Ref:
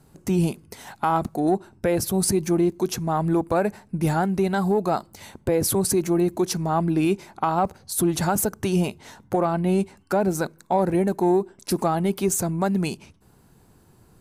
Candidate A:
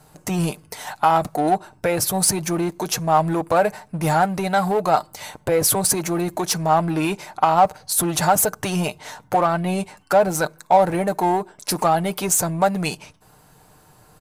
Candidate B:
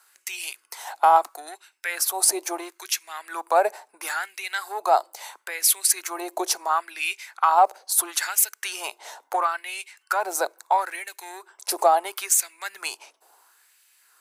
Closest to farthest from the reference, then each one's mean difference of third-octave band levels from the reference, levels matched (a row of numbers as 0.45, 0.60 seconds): A, B; 4.5, 12.5 decibels